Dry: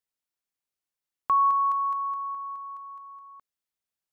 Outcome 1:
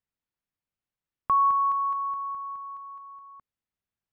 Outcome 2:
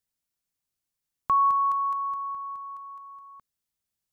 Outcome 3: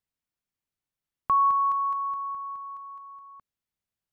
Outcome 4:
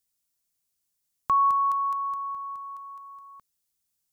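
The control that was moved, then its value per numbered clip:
bass and treble, treble: −12, +5, −4, +13 decibels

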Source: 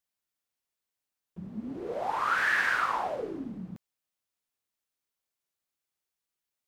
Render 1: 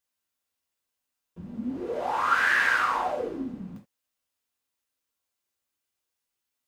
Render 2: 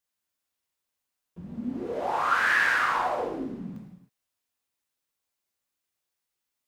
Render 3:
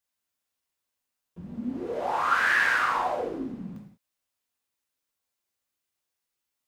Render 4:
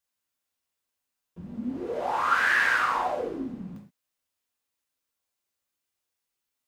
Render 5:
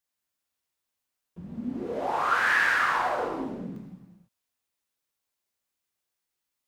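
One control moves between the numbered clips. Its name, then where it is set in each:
reverb whose tail is shaped and stops, gate: 100, 340, 220, 150, 530 milliseconds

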